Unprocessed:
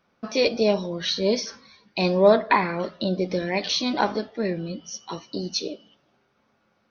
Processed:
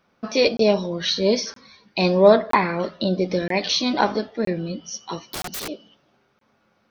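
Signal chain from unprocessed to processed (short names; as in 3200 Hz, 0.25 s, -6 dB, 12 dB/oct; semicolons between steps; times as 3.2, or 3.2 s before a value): 5.27–5.69 wrapped overs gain 28 dB; crackling interface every 0.97 s, samples 1024, zero, from 0.57; gain +3 dB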